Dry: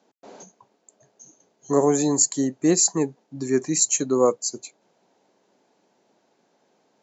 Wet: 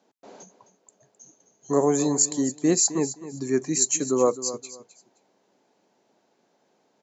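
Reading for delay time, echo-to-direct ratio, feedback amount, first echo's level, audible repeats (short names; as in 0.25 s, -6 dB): 0.261 s, -14.0 dB, 22%, -14.0 dB, 2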